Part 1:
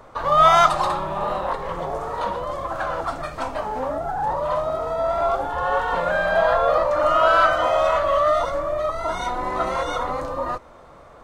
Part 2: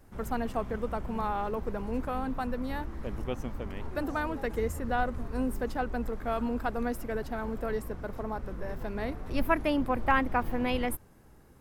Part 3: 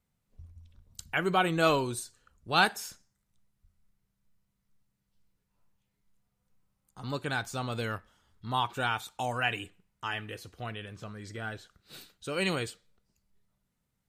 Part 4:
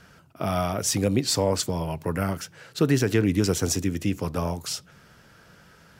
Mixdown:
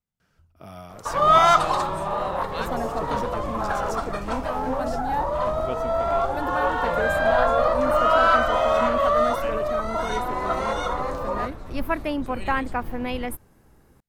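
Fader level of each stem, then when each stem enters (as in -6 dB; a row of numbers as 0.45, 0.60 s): -1.5, +1.0, -10.5, -15.5 dB; 0.90, 2.40, 0.00, 0.20 s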